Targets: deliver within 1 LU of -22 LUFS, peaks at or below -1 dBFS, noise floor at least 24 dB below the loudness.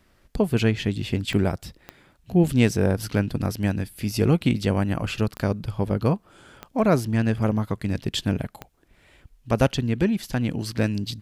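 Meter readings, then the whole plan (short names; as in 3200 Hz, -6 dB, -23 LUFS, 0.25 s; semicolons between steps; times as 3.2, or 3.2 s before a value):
clicks 5; loudness -24.0 LUFS; peak -4.5 dBFS; loudness target -22.0 LUFS
-> de-click; gain +2 dB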